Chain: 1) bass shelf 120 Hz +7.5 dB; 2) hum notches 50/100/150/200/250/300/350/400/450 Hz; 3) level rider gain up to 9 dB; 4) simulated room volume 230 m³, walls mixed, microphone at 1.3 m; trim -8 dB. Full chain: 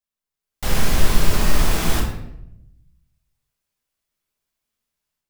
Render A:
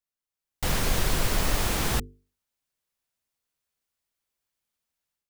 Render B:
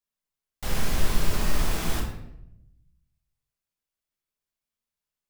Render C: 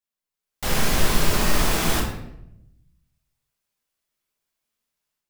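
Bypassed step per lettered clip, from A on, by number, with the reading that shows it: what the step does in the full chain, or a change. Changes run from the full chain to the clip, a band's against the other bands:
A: 4, momentary loudness spread change -5 LU; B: 3, loudness change -7.5 LU; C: 1, 125 Hz band -4.5 dB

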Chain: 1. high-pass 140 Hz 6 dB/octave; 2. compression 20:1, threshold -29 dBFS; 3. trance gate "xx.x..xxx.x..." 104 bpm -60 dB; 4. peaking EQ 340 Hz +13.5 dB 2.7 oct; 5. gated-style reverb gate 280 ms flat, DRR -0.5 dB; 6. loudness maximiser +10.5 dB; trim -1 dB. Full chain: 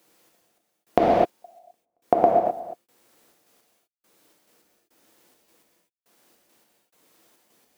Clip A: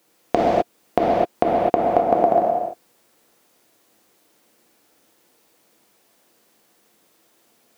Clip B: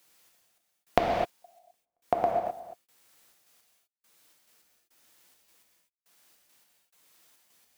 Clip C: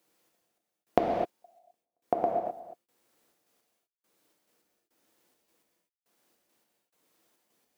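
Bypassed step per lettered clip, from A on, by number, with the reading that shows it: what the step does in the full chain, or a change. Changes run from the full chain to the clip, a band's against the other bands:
3, loudness change +2.0 LU; 4, 2 kHz band +7.0 dB; 6, crest factor change +5.5 dB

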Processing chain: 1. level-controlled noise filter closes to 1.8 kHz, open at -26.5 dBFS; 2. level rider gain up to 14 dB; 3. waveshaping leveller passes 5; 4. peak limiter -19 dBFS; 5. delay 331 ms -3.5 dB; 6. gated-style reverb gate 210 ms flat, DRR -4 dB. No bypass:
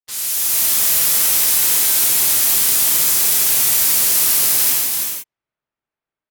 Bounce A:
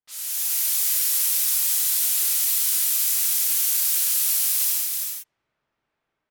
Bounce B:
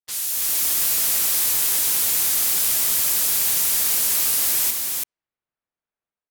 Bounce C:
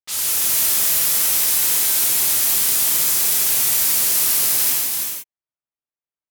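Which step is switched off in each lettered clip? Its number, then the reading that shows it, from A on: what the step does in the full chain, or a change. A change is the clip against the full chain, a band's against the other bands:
3, 1 kHz band -7.0 dB; 6, echo-to-direct 6.0 dB to -3.5 dB; 2, momentary loudness spread change -2 LU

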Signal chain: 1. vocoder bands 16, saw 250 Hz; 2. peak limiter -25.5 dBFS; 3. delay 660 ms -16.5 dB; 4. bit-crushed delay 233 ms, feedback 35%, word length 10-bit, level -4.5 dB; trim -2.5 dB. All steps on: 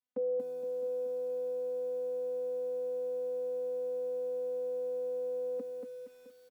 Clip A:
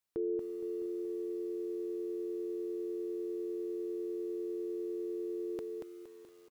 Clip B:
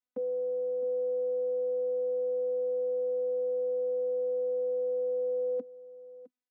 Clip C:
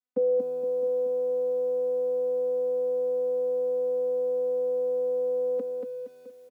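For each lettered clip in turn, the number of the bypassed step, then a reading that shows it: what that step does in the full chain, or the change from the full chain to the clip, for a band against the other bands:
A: 1, crest factor change +2.5 dB; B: 4, crest factor change -3.5 dB; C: 2, mean gain reduction 8.5 dB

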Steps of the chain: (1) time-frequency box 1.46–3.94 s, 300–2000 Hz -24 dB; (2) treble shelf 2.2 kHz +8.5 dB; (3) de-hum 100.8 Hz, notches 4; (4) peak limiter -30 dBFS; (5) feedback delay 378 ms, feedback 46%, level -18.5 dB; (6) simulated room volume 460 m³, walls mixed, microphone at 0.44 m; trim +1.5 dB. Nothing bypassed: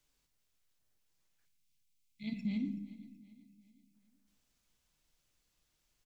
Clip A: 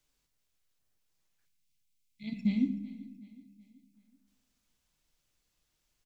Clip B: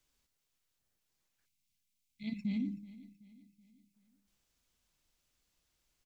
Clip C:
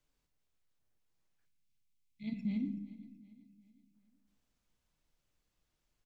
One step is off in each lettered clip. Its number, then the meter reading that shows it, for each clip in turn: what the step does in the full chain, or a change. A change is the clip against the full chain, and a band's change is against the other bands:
4, mean gain reduction 2.0 dB; 6, echo-to-direct -9.0 dB to -17.5 dB; 2, 2 kHz band -4.0 dB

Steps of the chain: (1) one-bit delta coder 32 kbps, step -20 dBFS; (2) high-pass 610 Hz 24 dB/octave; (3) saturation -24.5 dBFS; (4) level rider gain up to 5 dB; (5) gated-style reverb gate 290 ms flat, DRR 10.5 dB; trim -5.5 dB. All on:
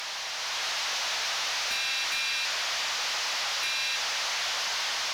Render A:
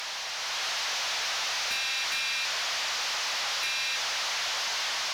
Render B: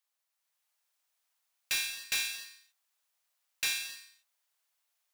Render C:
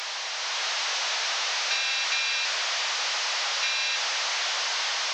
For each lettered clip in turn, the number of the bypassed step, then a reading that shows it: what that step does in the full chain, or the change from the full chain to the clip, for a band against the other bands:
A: 5, crest factor change -3.0 dB; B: 1, 1 kHz band -13.0 dB; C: 3, distortion -16 dB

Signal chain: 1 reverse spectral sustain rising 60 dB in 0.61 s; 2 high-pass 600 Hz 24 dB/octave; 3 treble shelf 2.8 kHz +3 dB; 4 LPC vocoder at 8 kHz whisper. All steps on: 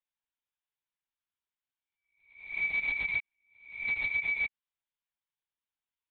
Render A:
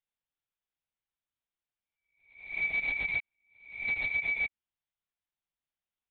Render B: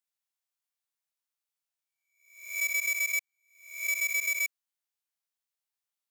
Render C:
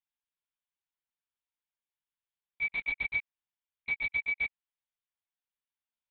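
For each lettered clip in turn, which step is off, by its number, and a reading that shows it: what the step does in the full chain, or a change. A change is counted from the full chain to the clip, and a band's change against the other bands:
2, 125 Hz band +2.0 dB; 4, crest factor change +1.5 dB; 1, crest factor change +2.0 dB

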